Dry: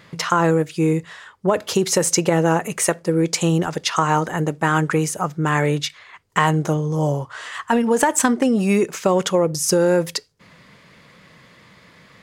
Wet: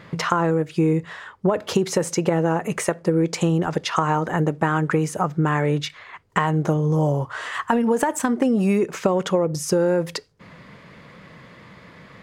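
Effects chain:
0:06.70–0:08.79: high-shelf EQ 11,000 Hz +10.5 dB
downward compressor 4 to 1, threshold −22 dBFS, peak gain reduction 10 dB
high-shelf EQ 3,100 Hz −12 dB
level +5.5 dB

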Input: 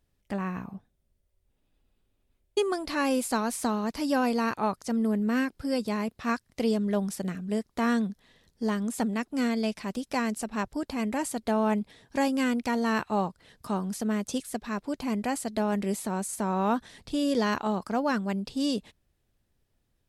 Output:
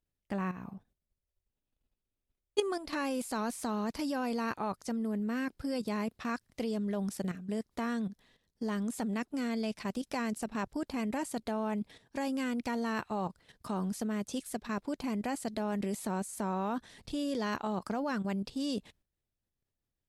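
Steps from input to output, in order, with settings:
noise gate −58 dBFS, range −8 dB
output level in coarse steps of 11 dB

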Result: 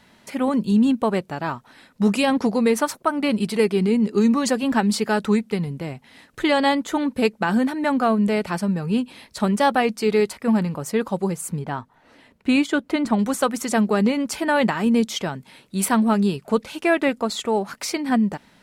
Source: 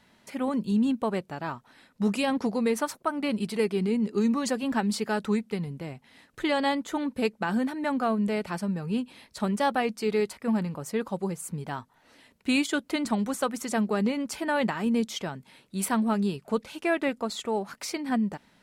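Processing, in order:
0:11.59–0:13.19: high-shelf EQ 3,400 Hz −11 dB
level +7 dB

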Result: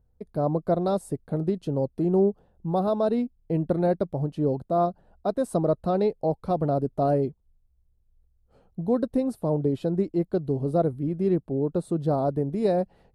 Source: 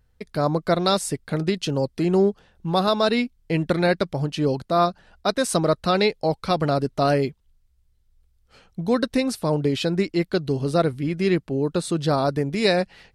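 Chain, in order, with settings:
drawn EQ curve 710 Hz 0 dB, 2,200 Hz −21 dB, 3,900 Hz −19 dB, 5,700 Hz −22 dB, 10,000 Hz −11 dB
level −2.5 dB

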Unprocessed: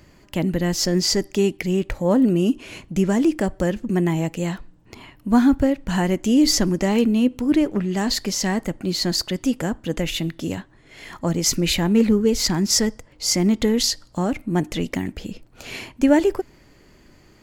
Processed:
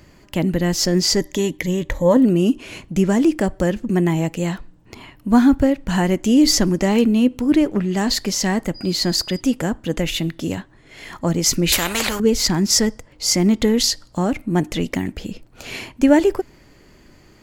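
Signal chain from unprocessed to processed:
0:01.20–0:02.17: EQ curve with evenly spaced ripples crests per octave 1.1, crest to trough 9 dB
0:08.74–0:09.39: steady tone 4,900 Hz −39 dBFS
0:11.72–0:12.20: every bin compressed towards the loudest bin 4 to 1
level +2.5 dB

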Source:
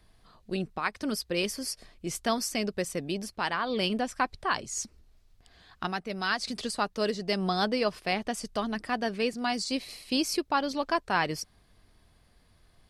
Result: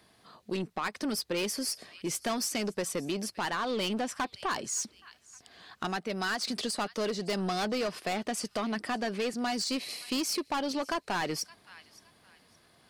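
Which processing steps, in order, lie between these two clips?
high-pass filter 180 Hz 12 dB per octave
delay with a high-pass on its return 566 ms, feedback 31%, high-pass 1,800 Hz, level −23.5 dB
soft clipping −28 dBFS, distortion −9 dB
downward compressor 2.5 to 1, threshold −35 dBFS, peak gain reduction 4 dB
level +5 dB

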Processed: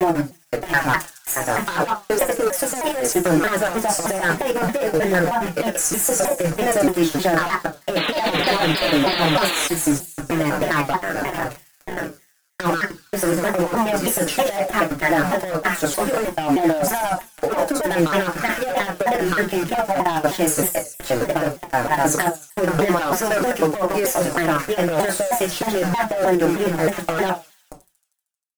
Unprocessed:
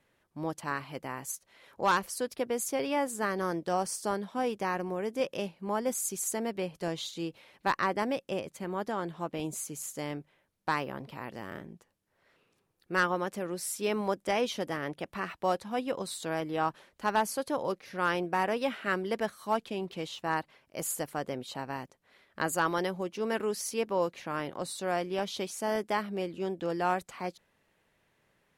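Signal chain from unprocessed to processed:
slices reordered back to front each 105 ms, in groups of 5
bit reduction 7 bits
graphic EQ with 15 bands 630 Hz +8 dB, 1,600 Hz +8 dB, 4,000 Hz −8 dB
on a send at −3 dB: convolution reverb RT60 0.20 s, pre-delay 3 ms
on the sum: sound drawn into the spectrogram noise, 0:07.96–0:09.67, 260–4,600 Hz −35 dBFS
notch filter 1,100 Hz, Q 11
hard clipping −21.5 dBFS, distortion −10 dB
compressor whose output falls as the input rises −28 dBFS, ratio −0.5
comb filter 6 ms, depth 70%
delay with a high-pass on its return 78 ms, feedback 64%, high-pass 5,100 Hz, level −7.5 dB
pitch modulation by a square or saw wave saw down 3.2 Hz, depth 250 cents
level +8.5 dB

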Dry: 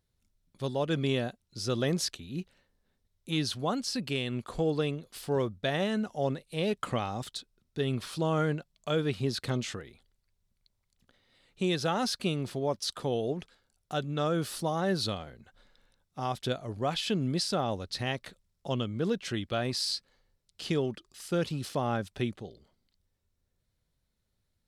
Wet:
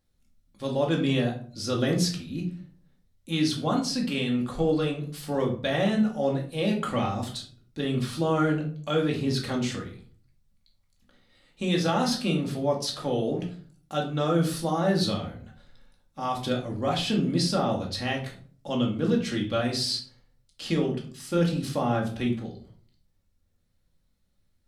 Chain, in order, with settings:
rectangular room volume 400 cubic metres, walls furnished, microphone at 2.3 metres

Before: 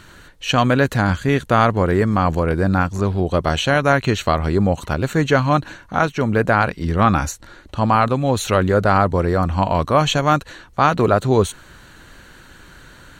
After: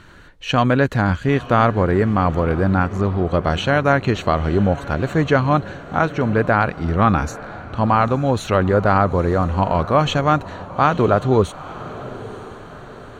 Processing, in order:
low-pass filter 2,700 Hz 6 dB per octave
on a send: feedback delay with all-pass diffusion 925 ms, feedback 47%, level −16 dB

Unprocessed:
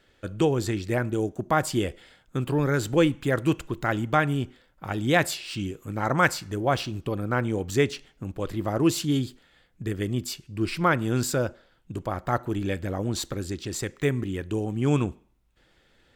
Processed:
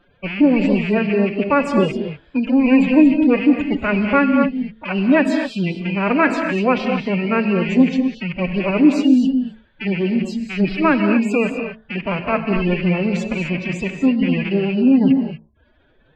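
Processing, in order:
loose part that buzzes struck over −36 dBFS, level −16 dBFS
gate on every frequency bin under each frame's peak −20 dB strong
mains-hum notches 60/120/180/240 Hz
dynamic equaliser 270 Hz, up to +5 dB, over −36 dBFS, Q 2.2
phase-vocoder pitch shift with formants kept +10.5 semitones
head-to-tape spacing loss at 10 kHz 23 dB
reverb whose tail is shaped and stops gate 270 ms rising, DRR 5.5 dB
level +8 dB

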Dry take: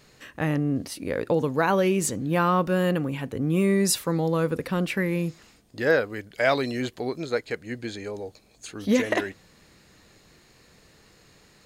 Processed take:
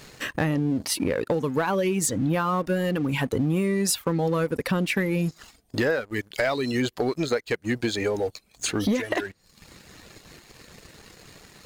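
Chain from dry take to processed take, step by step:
reverb reduction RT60 0.66 s
downward compressor 10 to 1, threshold −34 dBFS, peak gain reduction 18 dB
leveller curve on the samples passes 2
level +6 dB

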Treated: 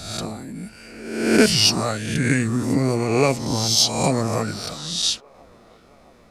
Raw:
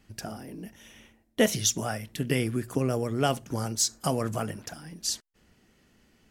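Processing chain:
peak hold with a rise ahead of every peak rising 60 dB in 0.93 s
delay with a band-pass on its return 671 ms, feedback 64%, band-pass 1,000 Hz, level −23 dB
formants moved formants −4 semitones
level +5.5 dB

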